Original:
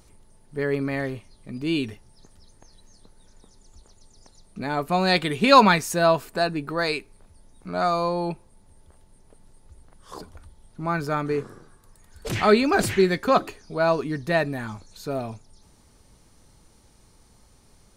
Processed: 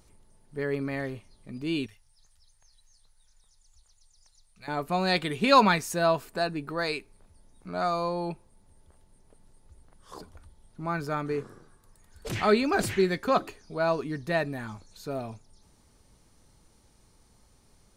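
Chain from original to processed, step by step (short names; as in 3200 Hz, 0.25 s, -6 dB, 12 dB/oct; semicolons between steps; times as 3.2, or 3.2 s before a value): 1.86–4.68 passive tone stack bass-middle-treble 10-0-10; gain -5 dB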